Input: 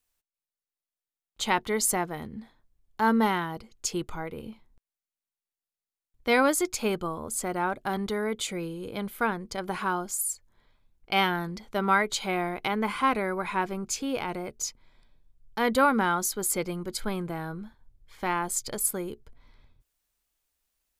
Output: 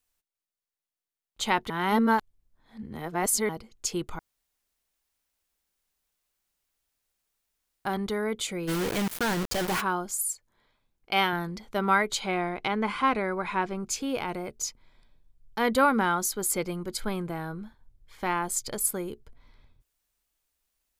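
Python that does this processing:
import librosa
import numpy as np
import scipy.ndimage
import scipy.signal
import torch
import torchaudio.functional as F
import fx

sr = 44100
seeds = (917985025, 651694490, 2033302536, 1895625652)

y = fx.quant_companded(x, sr, bits=2, at=(8.67, 9.8), fade=0.02)
y = fx.low_shelf(y, sr, hz=120.0, db=-11.5, at=(10.31, 11.33))
y = fx.lowpass(y, sr, hz=7100.0, slope=12, at=(12.2, 13.8))
y = fx.edit(y, sr, fx.reverse_span(start_s=1.7, length_s=1.79),
    fx.room_tone_fill(start_s=4.19, length_s=3.66), tone=tone)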